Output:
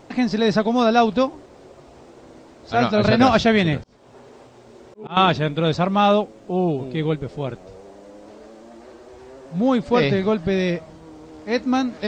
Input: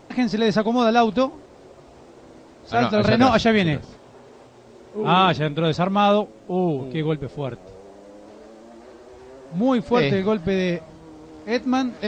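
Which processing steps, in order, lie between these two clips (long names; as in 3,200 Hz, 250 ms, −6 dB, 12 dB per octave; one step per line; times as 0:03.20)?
0:03.81–0:05.17: volume swells 341 ms
level +1 dB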